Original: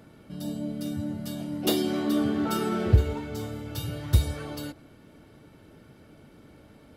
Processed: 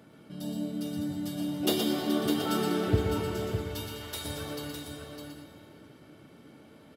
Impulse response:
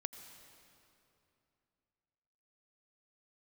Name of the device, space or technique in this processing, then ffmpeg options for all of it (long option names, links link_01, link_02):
PA in a hall: -filter_complex "[0:a]asettb=1/sr,asplit=3[link_01][link_02][link_03];[link_01]atrim=end=3.204[link_04];[link_02]atrim=start=3.2:end=4.25,asetpts=PTS-STARTPTS,afade=type=in:duration=0.004:curve=qsin,afade=type=out:start_time=1.046:duration=0.004:curve=qsin,highpass=720[link_05];[link_03]atrim=start=4.246[link_06];[link_04][link_05]acrossfade=duration=0.004:curve1=hsin:curve2=qsin[link_07];[link_07][link_06]acrossfade=duration=0.004:curve1=qsin:curve2=hsin,highpass=120,equalizer=frequency=3200:width_type=o:width=0.21:gain=3,aecho=1:1:120:0.501[link_08];[1:a]atrim=start_sample=2205[link_09];[link_08][link_09]afir=irnorm=-1:irlink=0,aecho=1:1:607:0.473"